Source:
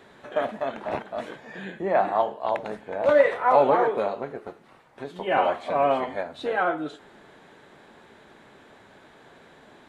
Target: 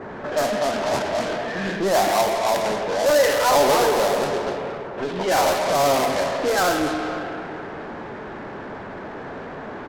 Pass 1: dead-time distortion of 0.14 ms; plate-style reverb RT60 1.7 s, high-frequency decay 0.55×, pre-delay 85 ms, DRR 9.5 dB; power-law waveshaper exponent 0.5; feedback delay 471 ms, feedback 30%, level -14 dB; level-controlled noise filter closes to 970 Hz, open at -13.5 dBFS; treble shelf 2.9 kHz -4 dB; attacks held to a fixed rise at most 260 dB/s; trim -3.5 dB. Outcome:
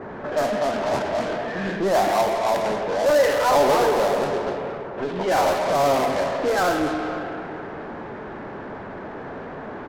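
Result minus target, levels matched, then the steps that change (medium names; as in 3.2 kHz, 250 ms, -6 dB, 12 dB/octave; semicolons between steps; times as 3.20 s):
8 kHz band -5.5 dB
change: treble shelf 2.9 kHz +3.5 dB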